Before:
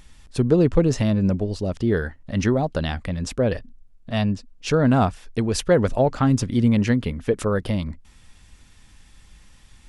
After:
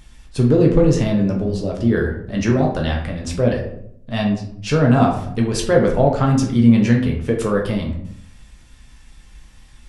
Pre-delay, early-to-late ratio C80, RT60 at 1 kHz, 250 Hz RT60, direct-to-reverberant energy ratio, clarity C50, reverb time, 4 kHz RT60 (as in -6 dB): 9 ms, 10.0 dB, 0.65 s, 0.85 s, -0.5 dB, 6.5 dB, 0.70 s, 0.40 s